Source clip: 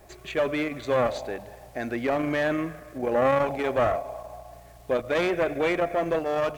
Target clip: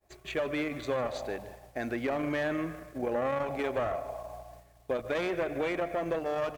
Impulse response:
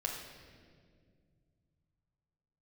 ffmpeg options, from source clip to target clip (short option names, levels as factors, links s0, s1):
-filter_complex "[0:a]acompressor=threshold=0.0562:ratio=6,asplit=2[s0][s1];[s1]adelay=151.6,volume=0.158,highshelf=f=4000:g=-3.41[s2];[s0][s2]amix=inputs=2:normalize=0,agate=range=0.0224:threshold=0.00891:ratio=3:detection=peak,volume=0.75"